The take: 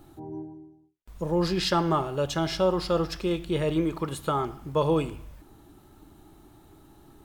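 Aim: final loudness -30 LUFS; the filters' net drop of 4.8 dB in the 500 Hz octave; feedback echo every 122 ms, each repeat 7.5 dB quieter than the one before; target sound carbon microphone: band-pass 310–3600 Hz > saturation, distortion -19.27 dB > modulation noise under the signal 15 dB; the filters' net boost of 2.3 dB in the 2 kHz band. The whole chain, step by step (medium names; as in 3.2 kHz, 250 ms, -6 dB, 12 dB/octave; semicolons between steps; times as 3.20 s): band-pass 310–3600 Hz; peaking EQ 500 Hz -5 dB; peaking EQ 2 kHz +4 dB; feedback delay 122 ms, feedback 42%, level -7.5 dB; saturation -18.5 dBFS; modulation noise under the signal 15 dB; trim +1 dB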